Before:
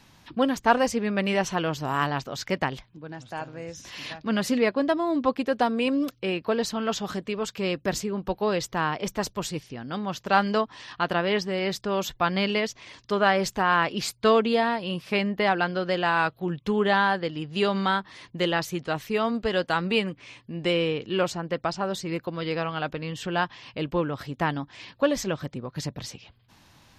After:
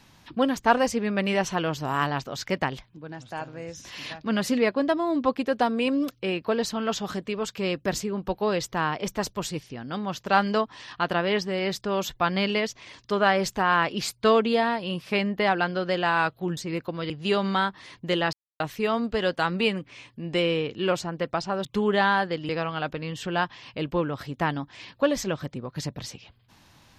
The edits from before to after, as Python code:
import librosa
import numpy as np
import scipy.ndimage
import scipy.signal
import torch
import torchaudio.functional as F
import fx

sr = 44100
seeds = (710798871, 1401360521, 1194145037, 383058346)

y = fx.edit(x, sr, fx.swap(start_s=16.57, length_s=0.84, other_s=21.96, other_length_s=0.53),
    fx.silence(start_s=18.64, length_s=0.27), tone=tone)